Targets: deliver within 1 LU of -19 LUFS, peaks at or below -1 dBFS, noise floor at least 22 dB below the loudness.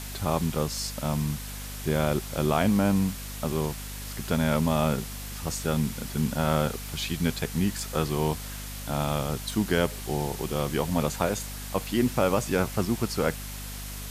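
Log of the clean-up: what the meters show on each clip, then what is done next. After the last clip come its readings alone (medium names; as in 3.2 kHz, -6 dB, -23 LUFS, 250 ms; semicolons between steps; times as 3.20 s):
hum 50 Hz; highest harmonic 250 Hz; hum level -36 dBFS; noise floor -37 dBFS; noise floor target -50 dBFS; loudness -28.0 LUFS; peak level -10.0 dBFS; loudness target -19.0 LUFS
-> hum notches 50/100/150/200/250 Hz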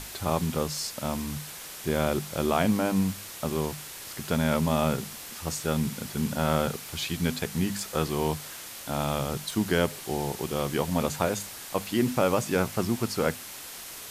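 hum not found; noise floor -42 dBFS; noise floor target -51 dBFS
-> noise reduction 9 dB, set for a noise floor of -42 dBFS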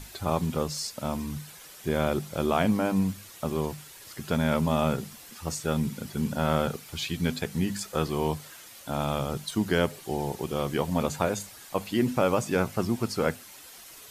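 noise floor -48 dBFS; noise floor target -51 dBFS
-> noise reduction 6 dB, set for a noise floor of -48 dBFS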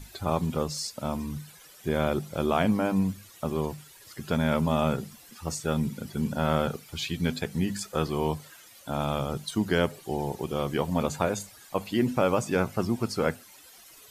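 noise floor -52 dBFS; loudness -29.0 LUFS; peak level -10.0 dBFS; loudness target -19.0 LUFS
-> trim +10 dB; peak limiter -1 dBFS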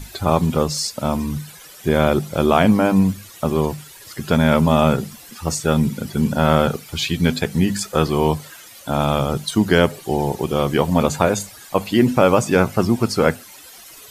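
loudness -19.0 LUFS; peak level -1.0 dBFS; noise floor -42 dBFS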